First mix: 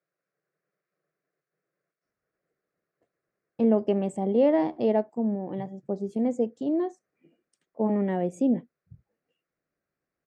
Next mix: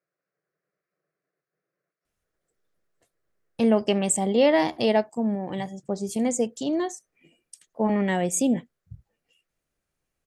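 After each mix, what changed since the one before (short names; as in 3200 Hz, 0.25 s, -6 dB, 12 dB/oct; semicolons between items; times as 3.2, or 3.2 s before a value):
first voice: remove band-pass 330 Hz, Q 0.74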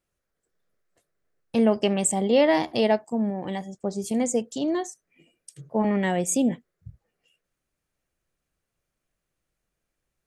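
first voice: entry -2.05 s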